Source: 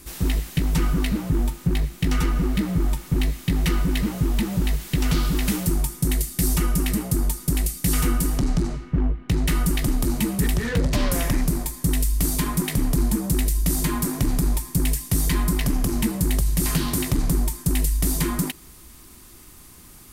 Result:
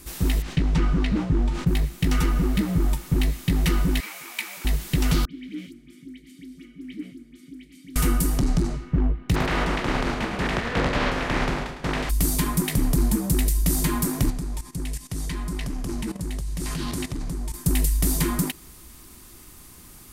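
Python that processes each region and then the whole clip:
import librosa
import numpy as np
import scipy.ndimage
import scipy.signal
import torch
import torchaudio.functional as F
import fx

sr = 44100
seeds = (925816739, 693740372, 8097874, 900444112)

y = fx.chain(x, sr, fx.air_absorb(metres=120.0),
    fx.sustainer(db_per_s=83.0), at=(0.42, 1.67))
y = fx.chain(y, sr, fx.highpass(hz=1100.0, slope=12),
    fx.peak_eq(hz=2300.0, db=13.0, octaves=0.21), at=(4.0, 4.65))
y = fx.chain(y, sr, fx.over_compress(threshold_db=-26.0, ratio=-1.0),
    fx.vowel_filter(vowel='i'),
    fx.dispersion(late='highs', ms=65.0, hz=2400.0), at=(5.25, 7.96))
y = fx.spec_flatten(y, sr, power=0.37, at=(9.34, 12.09), fade=0.02)
y = fx.lowpass(y, sr, hz=2100.0, slope=12, at=(9.34, 12.09), fade=0.02)
y = fx.echo_feedback(y, sr, ms=106, feedback_pct=47, wet_db=-9, at=(9.34, 12.09), fade=0.02)
y = fx.chain(y, sr, fx.lowpass(hz=8800.0, slope=12),
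    fx.level_steps(step_db=14), at=(14.3, 17.54))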